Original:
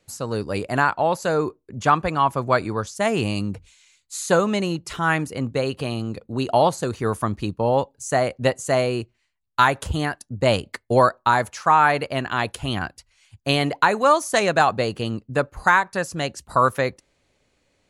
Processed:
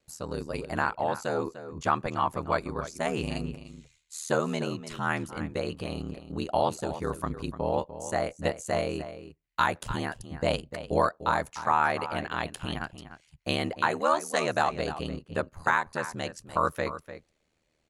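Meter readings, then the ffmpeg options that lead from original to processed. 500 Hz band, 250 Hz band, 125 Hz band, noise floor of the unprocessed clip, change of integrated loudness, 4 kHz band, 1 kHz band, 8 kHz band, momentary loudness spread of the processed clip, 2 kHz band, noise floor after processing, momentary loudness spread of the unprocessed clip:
−8.5 dB, −8.0 dB, −9.0 dB, −70 dBFS, −8.5 dB, −8.5 dB, −8.0 dB, −8.5 dB, 10 LU, −8.5 dB, −74 dBFS, 10 LU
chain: -filter_complex "[0:a]aeval=exprs='val(0)*sin(2*PI*39*n/s)':channel_layout=same,asplit=2[link_01][link_02];[link_02]adelay=297.4,volume=-12dB,highshelf=frequency=4000:gain=-6.69[link_03];[link_01][link_03]amix=inputs=2:normalize=0,volume=-5.5dB"

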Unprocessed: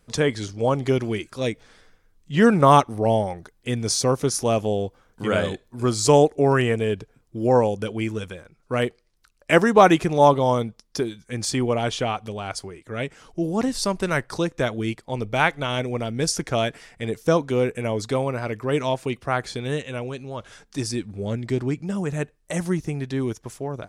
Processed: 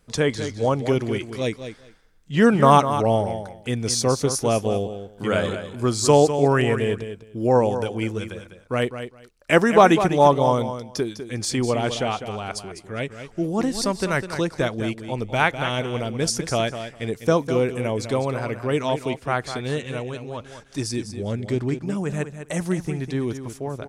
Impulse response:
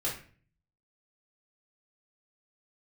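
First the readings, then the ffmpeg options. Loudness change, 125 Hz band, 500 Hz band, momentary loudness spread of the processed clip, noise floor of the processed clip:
+0.5 dB, +0.5 dB, +0.5 dB, 15 LU, −49 dBFS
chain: -af "aecho=1:1:202|404:0.316|0.0506"

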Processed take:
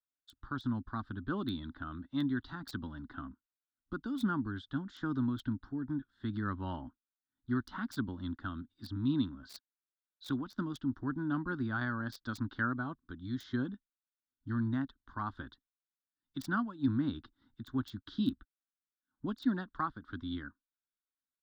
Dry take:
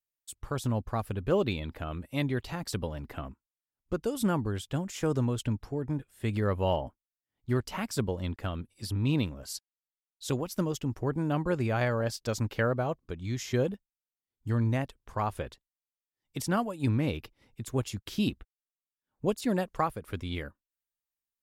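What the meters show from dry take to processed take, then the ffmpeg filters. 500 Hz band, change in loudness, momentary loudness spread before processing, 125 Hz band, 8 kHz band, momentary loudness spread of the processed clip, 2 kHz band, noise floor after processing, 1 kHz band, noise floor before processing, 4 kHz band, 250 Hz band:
−16.0 dB, −5.5 dB, 12 LU, −9.0 dB, below −15 dB, 12 LU, −2.0 dB, below −85 dBFS, −5.5 dB, below −85 dBFS, −7.5 dB, −2.0 dB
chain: -filter_complex "[0:a]firequalizer=gain_entry='entry(170,0);entry(270,12);entry(470,-16);entry(970,2);entry(1500,12);entry(2400,-19);entry(3500,8);entry(5600,-3);entry(11000,-6)':delay=0.05:min_phase=1,acrossover=split=240|4800[link_01][link_02][link_03];[link_03]acrusher=bits=5:mix=0:aa=0.000001[link_04];[link_01][link_02][link_04]amix=inputs=3:normalize=0,volume=-9dB"

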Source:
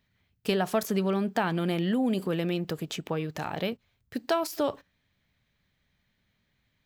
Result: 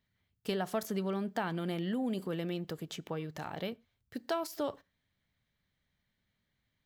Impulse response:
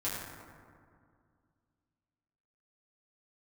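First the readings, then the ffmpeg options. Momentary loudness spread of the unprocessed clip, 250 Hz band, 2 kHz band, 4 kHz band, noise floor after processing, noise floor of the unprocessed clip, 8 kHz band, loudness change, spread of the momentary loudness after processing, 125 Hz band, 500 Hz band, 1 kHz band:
9 LU, −7.5 dB, −8.0 dB, −7.5 dB, −82 dBFS, −75 dBFS, −7.5 dB, −7.5 dB, 9 LU, −7.5 dB, −7.5 dB, −7.0 dB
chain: -filter_complex "[0:a]bandreject=frequency=2500:width=13,asplit=2[link_01][link_02];[1:a]atrim=start_sample=2205,afade=type=out:start_time=0.16:duration=0.01,atrim=end_sample=7497[link_03];[link_02][link_03]afir=irnorm=-1:irlink=0,volume=-27.5dB[link_04];[link_01][link_04]amix=inputs=2:normalize=0,volume=-7.5dB"

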